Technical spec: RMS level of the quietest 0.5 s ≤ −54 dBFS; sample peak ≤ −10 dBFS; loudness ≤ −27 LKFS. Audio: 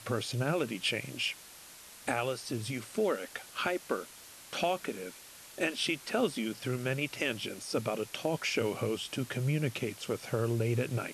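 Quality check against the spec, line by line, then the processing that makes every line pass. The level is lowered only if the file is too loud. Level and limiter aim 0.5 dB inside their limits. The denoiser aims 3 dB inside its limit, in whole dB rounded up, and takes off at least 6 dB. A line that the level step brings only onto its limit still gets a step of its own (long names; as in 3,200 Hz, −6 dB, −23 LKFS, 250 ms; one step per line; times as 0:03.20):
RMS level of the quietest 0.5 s −52 dBFS: out of spec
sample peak −17.5 dBFS: in spec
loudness −33.5 LKFS: in spec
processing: broadband denoise 6 dB, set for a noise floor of −52 dBFS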